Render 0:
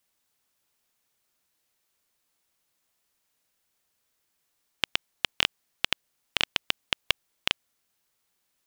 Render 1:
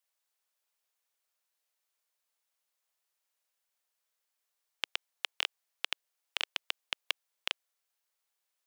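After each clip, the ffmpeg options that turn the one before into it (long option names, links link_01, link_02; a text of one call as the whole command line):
ffmpeg -i in.wav -af "highpass=frequency=470:width=0.5412,highpass=frequency=470:width=1.3066,volume=-8dB" out.wav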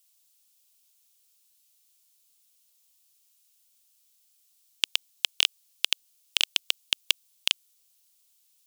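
ffmpeg -i in.wav -af "aexciter=amount=3.8:drive=7.6:freq=2600" out.wav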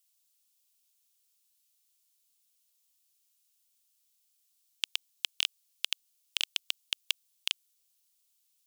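ffmpeg -i in.wav -af "highpass=730,volume=-7dB" out.wav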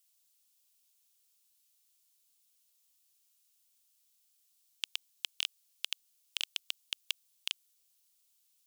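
ffmpeg -i in.wav -af "alimiter=limit=-15.5dB:level=0:latency=1:release=10,volume=1dB" out.wav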